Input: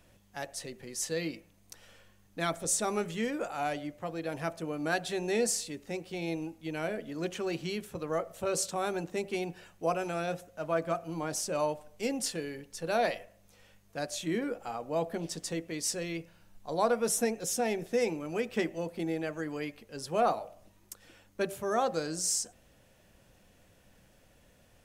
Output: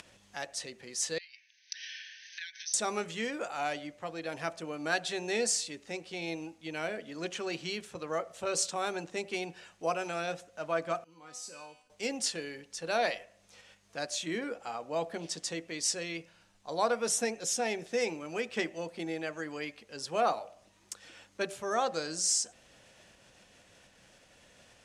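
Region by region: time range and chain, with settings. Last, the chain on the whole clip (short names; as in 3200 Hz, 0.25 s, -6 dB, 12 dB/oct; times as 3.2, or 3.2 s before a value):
1.18–2.74 compressor 16:1, threshold -43 dBFS + brick-wall FIR band-pass 1500–6300 Hz
11.04–11.9 bell 680 Hz -14.5 dB 0.28 oct + notch 1700 Hz, Q 28 + resonator 250 Hz, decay 0.59 s, mix 90%
whole clip: tilt -3.5 dB/oct; upward compressor, threshold -37 dBFS; weighting filter ITU-R 468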